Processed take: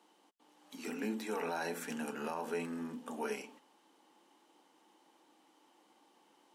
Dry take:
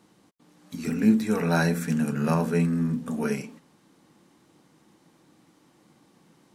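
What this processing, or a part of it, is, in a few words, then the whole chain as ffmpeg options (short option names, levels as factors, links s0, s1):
laptop speaker: -af "highpass=f=290:w=0.5412,highpass=f=290:w=1.3066,equalizer=f=860:t=o:w=0.44:g=9,equalizer=f=3000:t=o:w=0.28:g=8,alimiter=limit=0.1:level=0:latency=1:release=84,volume=0.422"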